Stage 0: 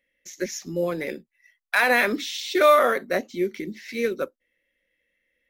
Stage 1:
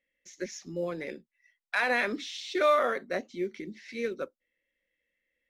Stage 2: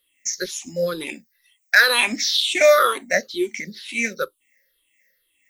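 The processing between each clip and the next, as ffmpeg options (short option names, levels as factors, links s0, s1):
-af "lowpass=7200,volume=0.422"
-af "afftfilt=real='re*pow(10,20/40*sin(2*PI*(0.62*log(max(b,1)*sr/1024/100)/log(2)-(-2.1)*(pts-256)/sr)))':imag='im*pow(10,20/40*sin(2*PI*(0.62*log(max(b,1)*sr/1024/100)/log(2)-(-2.1)*(pts-256)/sr)))':win_size=1024:overlap=0.75,crystalizer=i=7.5:c=0,volume=1.12"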